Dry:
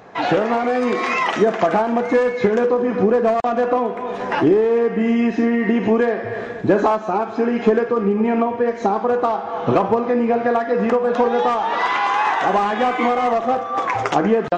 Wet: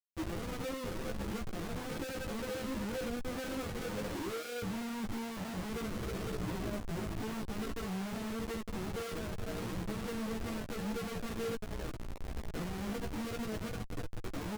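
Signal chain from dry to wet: Doppler pass-by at 4.97, 20 m/s, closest 15 m; Chebyshev band-pass 200–520 Hz, order 2; tilt -4 dB/oct; comb 6.1 ms, depth 38%; compressor 6:1, threshold -36 dBFS, peak gain reduction 26 dB; echo 0.177 s -13.5 dB; Schmitt trigger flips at -39.5 dBFS; chorus voices 4, 0.19 Hz, delay 14 ms, depth 4.6 ms; gain +3.5 dB

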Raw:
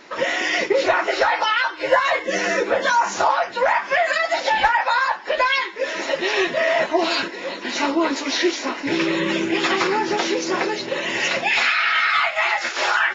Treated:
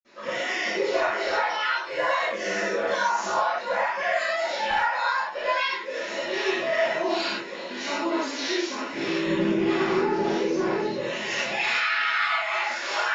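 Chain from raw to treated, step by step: 9.21–10.95 tilt -3 dB/oct; reverb, pre-delay 47 ms, DRR -60 dB; gain -2.5 dB

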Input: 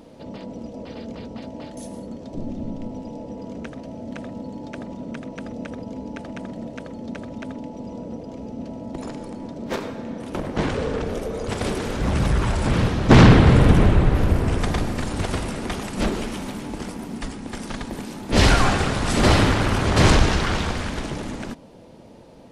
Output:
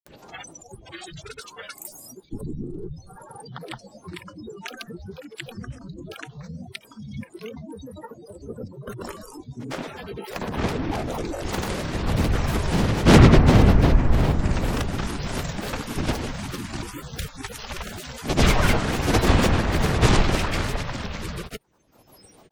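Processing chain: octaver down 1 oct, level -3 dB; spectral noise reduction 28 dB; upward compressor, threshold -32 dBFS; grains 0.1 s, grains 20/s, pitch spread up and down by 12 st; mismatched tape noise reduction encoder only; gain -1.5 dB

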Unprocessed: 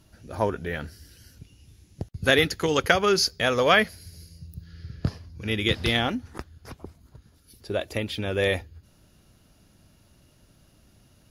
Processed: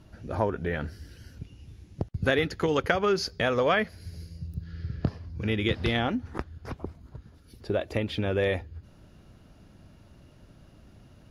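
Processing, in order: LPF 1800 Hz 6 dB/oct; compressor 2:1, threshold -33 dBFS, peak gain reduction 10 dB; gain +5.5 dB

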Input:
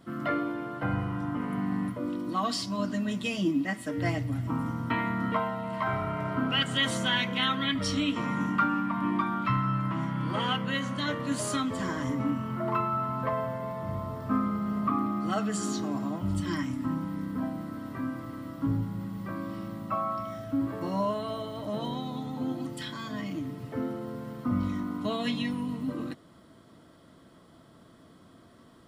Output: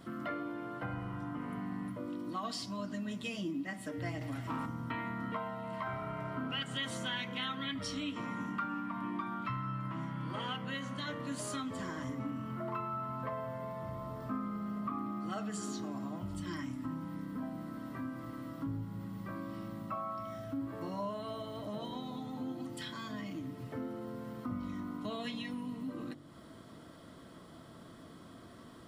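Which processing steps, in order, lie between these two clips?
de-hum 47.98 Hz, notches 20; compressor 2:1, threshold -49 dBFS, peak gain reduction 15 dB; 4.21–4.66 overdrive pedal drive 16 dB, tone 6700 Hz, clips at -31 dBFS; gain +3 dB

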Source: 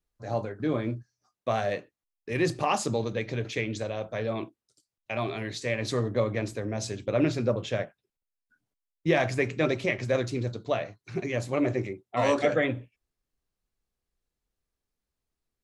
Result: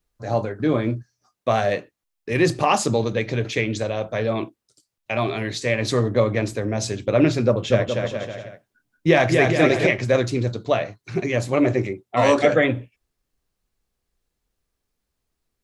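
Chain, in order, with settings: 7.46–9.87 bouncing-ball echo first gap 0.24 s, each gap 0.75×, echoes 5; gain +7.5 dB

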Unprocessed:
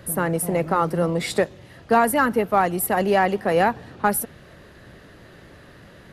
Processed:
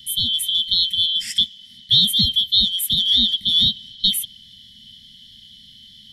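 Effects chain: four-band scrambler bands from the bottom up 2413; Chebyshev band-stop 230–1900 Hz, order 4; gain +2 dB

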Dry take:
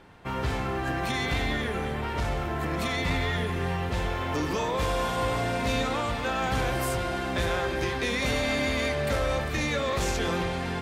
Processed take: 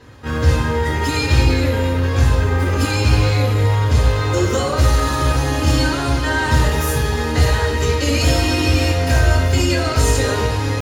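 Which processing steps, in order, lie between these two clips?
bell 8400 Hz +8 dB 1.7 oct; pitch shift +3 st; reverb RT60 0.50 s, pre-delay 3 ms, DRR -6.5 dB; gain -5.5 dB

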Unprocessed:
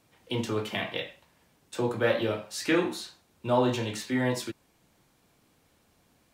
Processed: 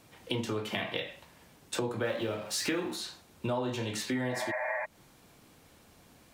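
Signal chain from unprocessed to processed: 2.05–2.96 G.711 law mismatch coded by mu; 4.31–4.82 spectral repair 520–2600 Hz before; compressor 5:1, threshold -38 dBFS, peak gain reduction 17 dB; gain +7 dB

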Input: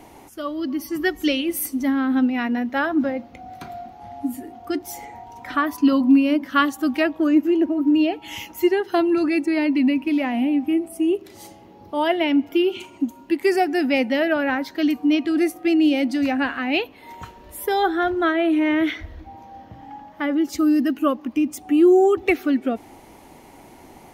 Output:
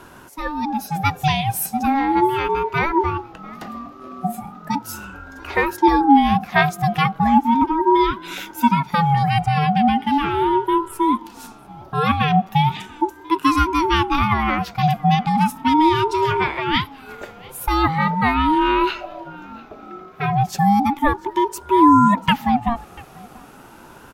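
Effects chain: echo 0.691 s -23.5 dB; ring modulator with a swept carrier 560 Hz, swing 20%, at 0.37 Hz; gain +5 dB

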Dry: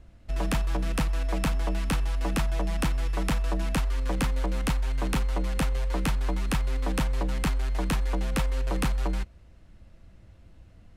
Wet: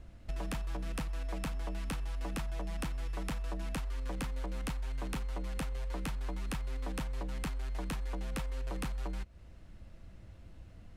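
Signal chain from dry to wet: compressor 4:1, threshold -36 dBFS, peak gain reduction 12 dB

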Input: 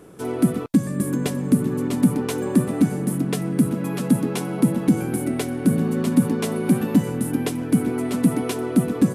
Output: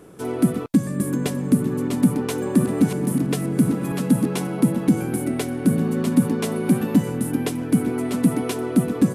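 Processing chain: 1.95–4.47 reverse delay 0.657 s, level -7.5 dB

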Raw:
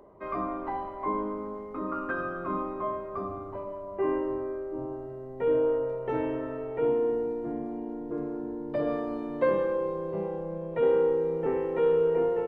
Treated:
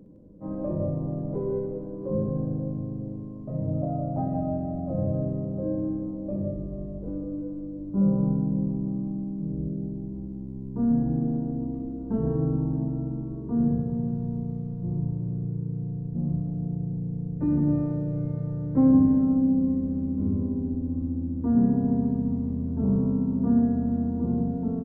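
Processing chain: tilt shelf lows +5 dB, about 1200 Hz; wide varispeed 0.502×; loudspeakers at several distances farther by 21 m -9 dB, 55 m -7 dB

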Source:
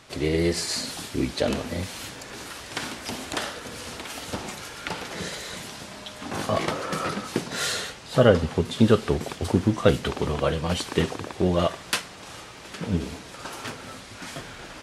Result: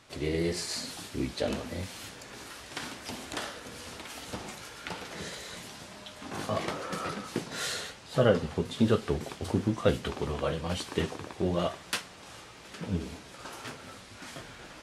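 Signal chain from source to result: flange 1 Hz, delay 9.3 ms, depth 9.9 ms, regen -51%; gain -2.5 dB

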